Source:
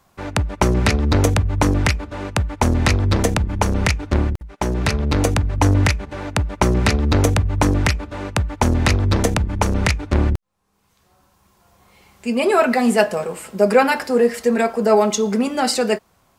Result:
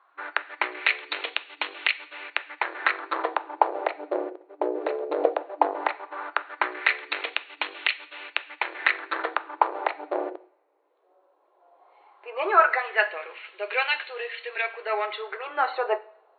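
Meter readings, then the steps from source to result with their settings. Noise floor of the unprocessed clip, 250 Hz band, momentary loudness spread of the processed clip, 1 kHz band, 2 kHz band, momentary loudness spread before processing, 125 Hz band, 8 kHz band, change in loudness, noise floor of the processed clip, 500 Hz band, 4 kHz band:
-61 dBFS, -21.0 dB, 9 LU, -3.5 dB, -1.0 dB, 8 LU, under -40 dB, under -40 dB, -8.5 dB, -65 dBFS, -10.0 dB, -6.0 dB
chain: LFO band-pass sine 0.16 Hz 510–2900 Hz; two-slope reverb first 0.55 s, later 2.7 s, from -27 dB, DRR 13.5 dB; FFT band-pass 300–4400 Hz; gain +3.5 dB

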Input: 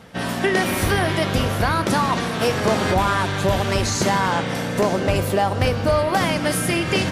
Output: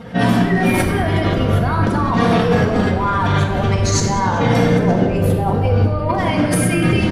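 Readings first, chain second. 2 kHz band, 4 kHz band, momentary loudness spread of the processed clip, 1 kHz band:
+0.5 dB, -2.0 dB, 3 LU, +2.0 dB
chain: spectral contrast raised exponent 1.5; negative-ratio compressor -25 dBFS, ratio -1; frequency-shifting echo 0.191 s, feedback 53%, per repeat -110 Hz, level -19 dB; shoebox room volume 1400 m³, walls mixed, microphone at 1.8 m; gain +5 dB

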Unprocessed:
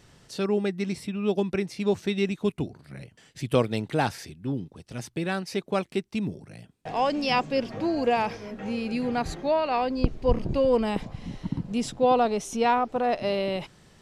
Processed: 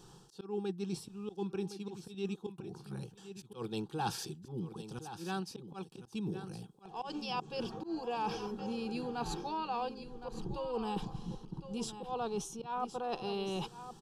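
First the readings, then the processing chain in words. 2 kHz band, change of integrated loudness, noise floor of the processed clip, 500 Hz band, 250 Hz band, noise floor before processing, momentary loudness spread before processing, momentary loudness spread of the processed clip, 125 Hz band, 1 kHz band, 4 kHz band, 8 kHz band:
-15.0 dB, -13.0 dB, -58 dBFS, -14.5 dB, -11.5 dB, -58 dBFS, 13 LU, 9 LU, -11.0 dB, -11.5 dB, -9.0 dB, -6.0 dB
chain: dynamic EQ 2600 Hz, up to +7 dB, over -44 dBFS, Q 0.97; fixed phaser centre 410 Hz, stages 8; reverse; compressor 5:1, threshold -38 dBFS, peak gain reduction 17 dB; reverse; small resonant body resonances 310/800/3300 Hz, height 8 dB, ringing for 40 ms; auto swell 0.138 s; on a send: echo 1.064 s -11.5 dB; on the sum: gain +1 dB

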